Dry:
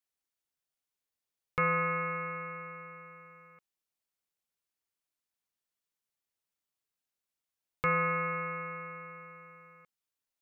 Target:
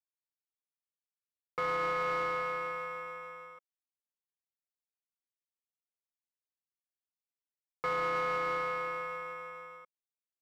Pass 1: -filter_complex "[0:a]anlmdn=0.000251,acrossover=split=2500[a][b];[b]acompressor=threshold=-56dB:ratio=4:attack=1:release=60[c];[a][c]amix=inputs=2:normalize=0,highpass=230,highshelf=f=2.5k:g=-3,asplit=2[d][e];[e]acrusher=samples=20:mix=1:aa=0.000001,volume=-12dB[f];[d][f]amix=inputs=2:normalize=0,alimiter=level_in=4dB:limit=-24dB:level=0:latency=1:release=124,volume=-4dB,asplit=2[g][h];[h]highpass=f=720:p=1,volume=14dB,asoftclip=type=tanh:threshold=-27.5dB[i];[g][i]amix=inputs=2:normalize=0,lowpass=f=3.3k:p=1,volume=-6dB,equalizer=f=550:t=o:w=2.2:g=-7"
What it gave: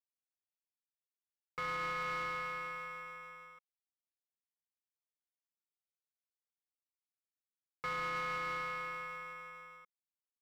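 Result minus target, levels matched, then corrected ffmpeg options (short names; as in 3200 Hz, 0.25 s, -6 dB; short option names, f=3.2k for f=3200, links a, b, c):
500 Hz band -6.5 dB
-filter_complex "[0:a]anlmdn=0.000251,acrossover=split=2500[a][b];[b]acompressor=threshold=-56dB:ratio=4:attack=1:release=60[c];[a][c]amix=inputs=2:normalize=0,highpass=230,highshelf=f=2.5k:g=-3,asplit=2[d][e];[e]acrusher=samples=20:mix=1:aa=0.000001,volume=-12dB[f];[d][f]amix=inputs=2:normalize=0,alimiter=level_in=4dB:limit=-24dB:level=0:latency=1:release=124,volume=-4dB,asplit=2[g][h];[h]highpass=f=720:p=1,volume=14dB,asoftclip=type=tanh:threshold=-27.5dB[i];[g][i]amix=inputs=2:normalize=0,lowpass=f=3.3k:p=1,volume=-6dB,equalizer=f=550:t=o:w=2.2:g=4.5"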